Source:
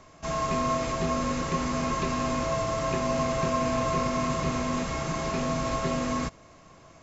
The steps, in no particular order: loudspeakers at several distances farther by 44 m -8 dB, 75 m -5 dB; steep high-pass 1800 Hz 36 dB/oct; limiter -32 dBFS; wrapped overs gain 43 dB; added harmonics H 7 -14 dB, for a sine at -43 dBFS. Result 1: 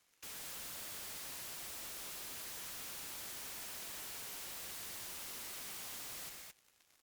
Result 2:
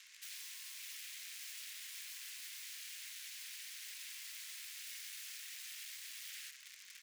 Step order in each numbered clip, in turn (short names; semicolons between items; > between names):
steep high-pass > limiter > wrapped overs > loudspeakers at several distances > added harmonics; limiter > loudspeakers at several distances > added harmonics > wrapped overs > steep high-pass